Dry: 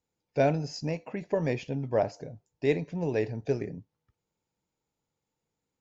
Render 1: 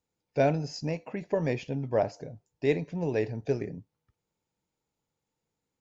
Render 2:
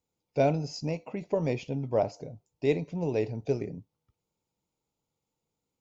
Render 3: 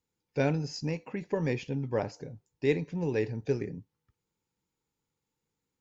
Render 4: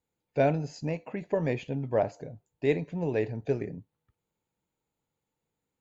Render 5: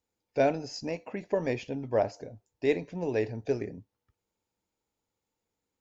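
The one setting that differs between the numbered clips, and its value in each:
bell, frequency: 16000, 1700, 650, 5400, 150 Hz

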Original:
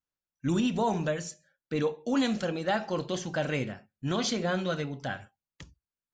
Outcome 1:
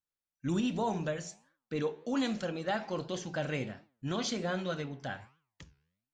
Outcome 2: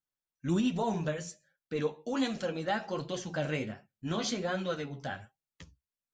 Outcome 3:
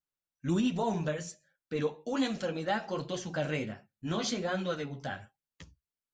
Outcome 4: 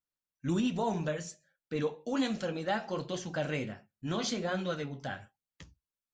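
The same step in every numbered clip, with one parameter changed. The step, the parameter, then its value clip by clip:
flange, regen: +91, +25, -11, -46%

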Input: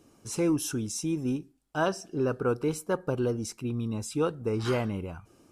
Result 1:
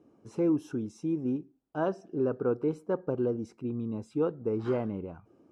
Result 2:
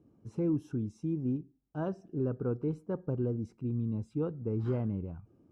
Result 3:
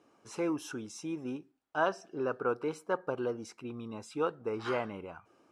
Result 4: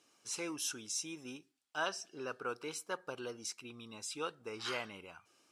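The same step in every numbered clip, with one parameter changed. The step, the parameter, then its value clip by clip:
band-pass, frequency: 350, 130, 1100, 3600 Hz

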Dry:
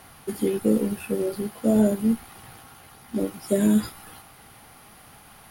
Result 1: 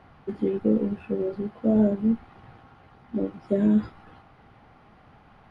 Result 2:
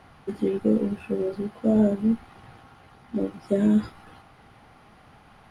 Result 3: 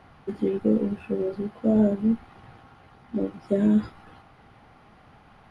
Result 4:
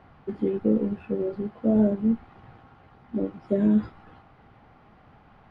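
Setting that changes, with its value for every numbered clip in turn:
tape spacing loss, at 10 kHz: 38, 21, 29, 46 dB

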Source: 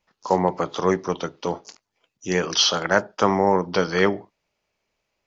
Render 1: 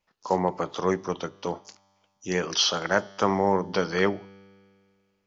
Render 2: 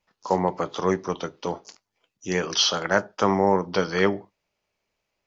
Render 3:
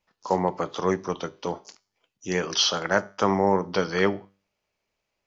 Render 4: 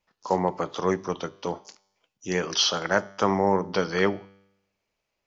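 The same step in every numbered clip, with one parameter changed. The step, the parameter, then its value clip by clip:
resonator, decay: 2.1, 0.15, 0.4, 0.85 s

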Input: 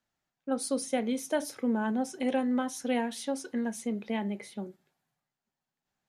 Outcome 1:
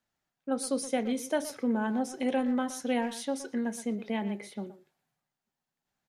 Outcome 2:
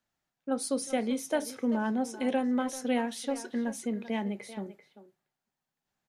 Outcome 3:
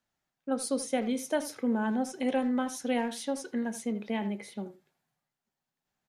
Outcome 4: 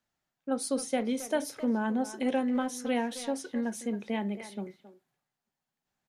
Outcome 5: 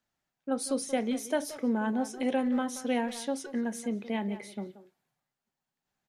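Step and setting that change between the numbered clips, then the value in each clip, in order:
speakerphone echo, time: 120, 390, 80, 270, 180 ms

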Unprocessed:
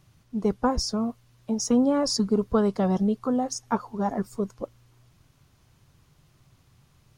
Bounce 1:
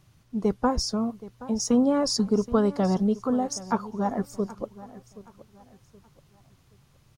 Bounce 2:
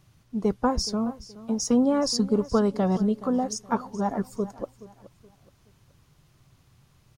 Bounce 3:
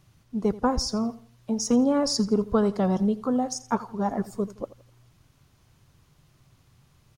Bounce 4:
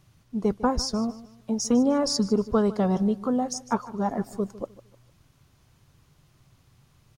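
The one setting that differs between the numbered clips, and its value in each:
feedback echo, time: 774, 423, 84, 152 ms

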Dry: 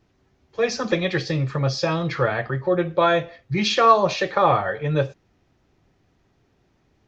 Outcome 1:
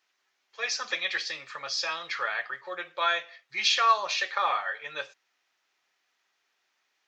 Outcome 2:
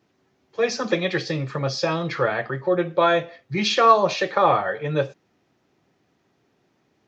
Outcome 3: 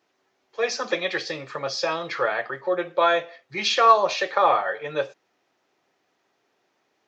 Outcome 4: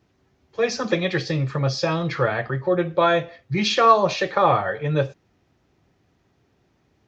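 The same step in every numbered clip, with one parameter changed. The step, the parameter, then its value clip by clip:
HPF, cutoff: 1500, 170, 500, 59 Hz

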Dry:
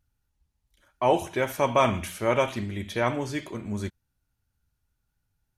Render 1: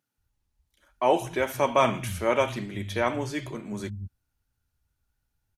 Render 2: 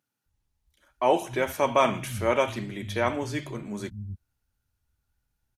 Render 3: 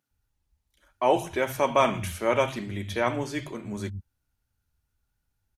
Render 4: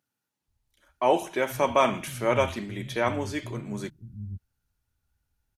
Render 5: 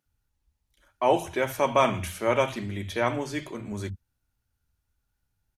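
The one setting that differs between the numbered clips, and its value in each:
bands offset in time, time: 180, 260, 110, 480, 60 ms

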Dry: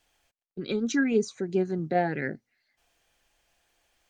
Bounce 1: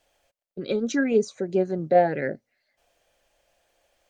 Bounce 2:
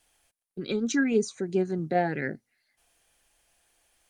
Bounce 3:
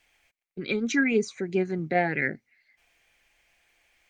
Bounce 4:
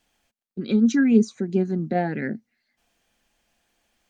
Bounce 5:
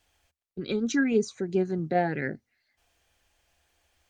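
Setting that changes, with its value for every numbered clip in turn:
bell, frequency: 570, 10000, 2200, 220, 76 Hz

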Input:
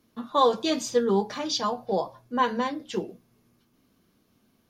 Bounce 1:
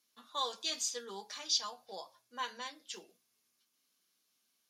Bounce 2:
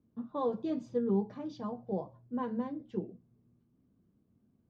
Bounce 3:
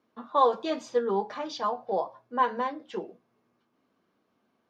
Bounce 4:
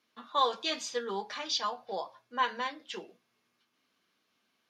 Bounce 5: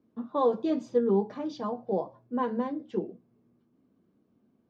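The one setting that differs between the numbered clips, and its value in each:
band-pass, frequency: 7600, 110, 870, 2500, 280 Hz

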